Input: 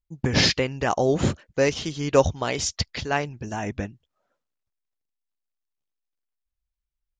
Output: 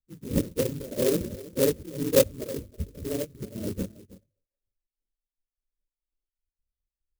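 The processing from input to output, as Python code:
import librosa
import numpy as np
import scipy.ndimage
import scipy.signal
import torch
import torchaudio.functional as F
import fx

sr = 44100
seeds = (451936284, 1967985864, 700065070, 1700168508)

p1 = fx.phase_scramble(x, sr, seeds[0], window_ms=50)
p2 = fx.step_gate(p1, sr, bpm=148, pattern='xx.x.xxx.x', floor_db=-12.0, edge_ms=4.5)
p3 = scipy.signal.sosfilt(scipy.signal.butter(16, 590.0, 'lowpass', fs=sr, output='sos'), p2)
p4 = fx.peak_eq(p3, sr, hz=130.0, db=-5.0, octaves=0.61)
p5 = fx.hum_notches(p4, sr, base_hz=50, count=2)
p6 = p5 + fx.echo_single(p5, sr, ms=322, db=-18.5, dry=0)
y = fx.clock_jitter(p6, sr, seeds[1], jitter_ms=0.11)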